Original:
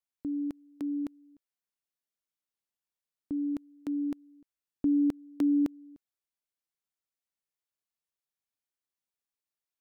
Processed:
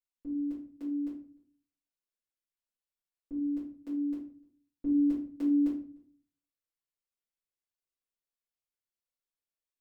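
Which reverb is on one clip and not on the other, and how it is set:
rectangular room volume 33 cubic metres, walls mixed, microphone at 1.9 metres
level −16 dB

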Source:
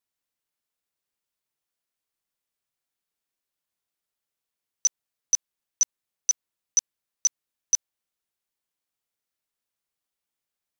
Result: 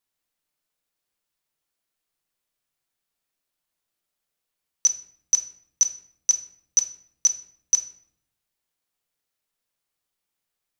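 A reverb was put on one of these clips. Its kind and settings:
rectangular room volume 130 cubic metres, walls mixed, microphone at 0.47 metres
level +3 dB

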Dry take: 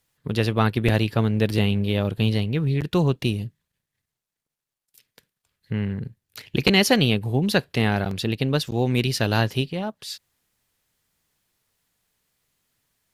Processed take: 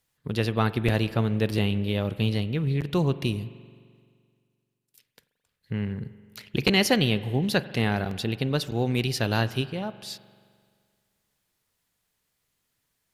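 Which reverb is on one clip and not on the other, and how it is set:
spring reverb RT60 2 s, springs 43 ms, chirp 65 ms, DRR 15 dB
level −3.5 dB

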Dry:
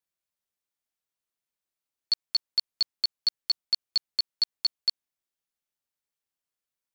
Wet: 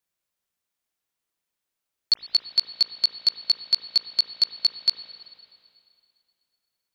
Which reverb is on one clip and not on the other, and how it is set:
spring reverb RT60 2.4 s, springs 35/53 ms, chirp 75 ms, DRR 5.5 dB
level +5 dB

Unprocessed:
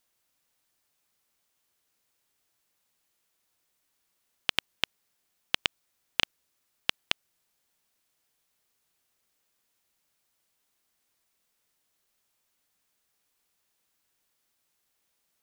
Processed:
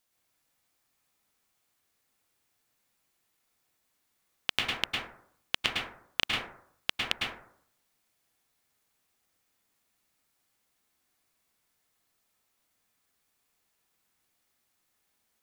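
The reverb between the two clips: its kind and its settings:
dense smooth reverb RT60 0.63 s, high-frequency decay 0.35×, pre-delay 95 ms, DRR −2.5 dB
level −2.5 dB

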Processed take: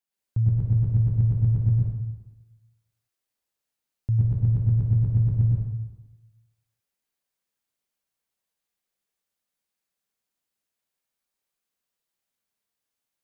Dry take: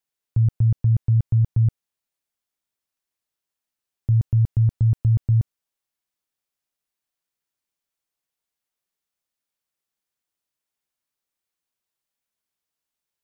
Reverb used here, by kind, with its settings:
dense smooth reverb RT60 1.1 s, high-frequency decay 0.85×, pre-delay 90 ms, DRR −5 dB
level −5 dB

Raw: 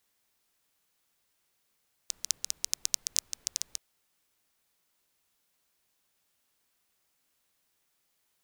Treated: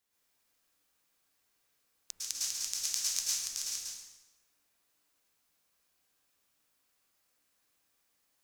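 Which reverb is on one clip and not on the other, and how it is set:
dense smooth reverb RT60 1.1 s, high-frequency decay 0.8×, pre-delay 95 ms, DRR −7.5 dB
level −8 dB

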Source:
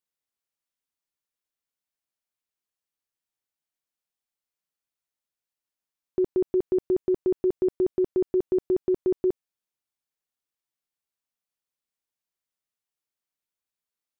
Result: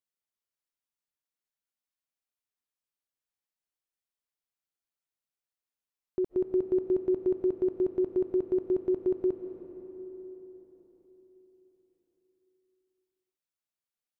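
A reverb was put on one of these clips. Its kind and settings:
comb and all-pass reverb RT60 4.4 s, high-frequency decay 0.55×, pre-delay 115 ms, DRR 7 dB
level −5.5 dB

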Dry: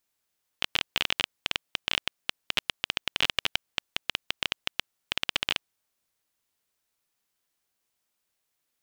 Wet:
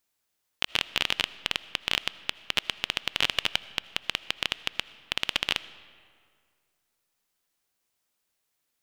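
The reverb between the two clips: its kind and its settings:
comb and all-pass reverb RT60 2.1 s, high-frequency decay 0.65×, pre-delay 40 ms, DRR 17 dB
level +1 dB

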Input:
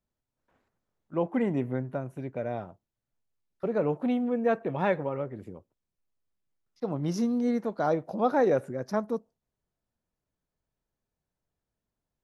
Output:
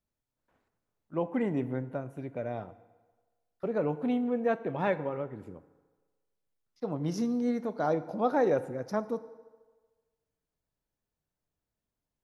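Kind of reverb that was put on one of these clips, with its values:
feedback delay network reverb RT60 1.4 s, low-frequency decay 0.75×, high-frequency decay 0.75×, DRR 13.5 dB
level −2.5 dB

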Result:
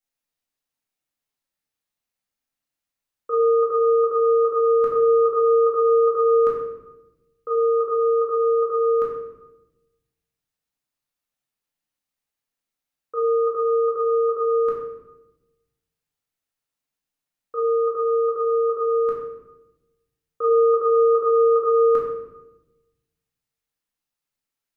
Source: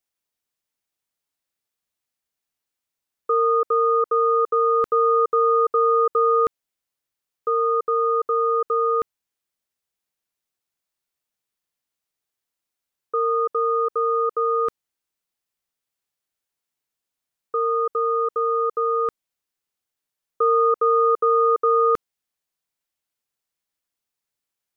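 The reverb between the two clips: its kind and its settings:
rectangular room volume 410 cubic metres, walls mixed, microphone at 2.2 metres
level −7 dB

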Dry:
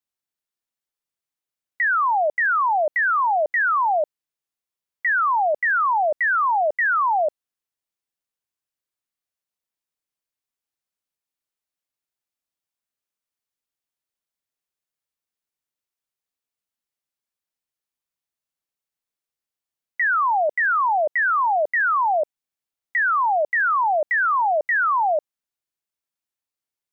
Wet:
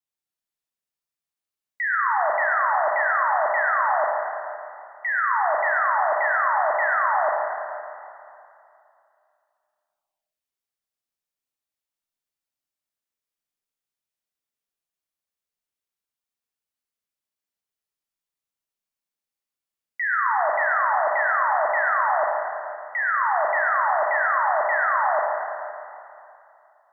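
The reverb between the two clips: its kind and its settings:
four-comb reverb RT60 2.6 s, combs from 28 ms, DRR −2 dB
level −5.5 dB

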